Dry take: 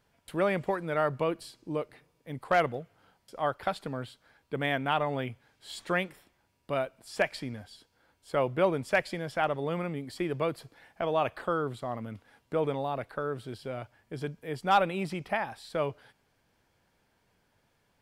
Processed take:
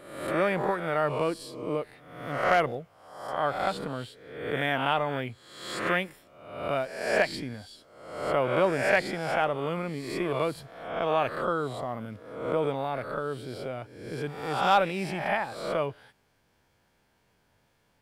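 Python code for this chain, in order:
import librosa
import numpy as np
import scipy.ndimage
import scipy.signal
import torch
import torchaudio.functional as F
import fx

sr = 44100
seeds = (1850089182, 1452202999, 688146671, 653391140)

y = fx.spec_swells(x, sr, rise_s=0.84)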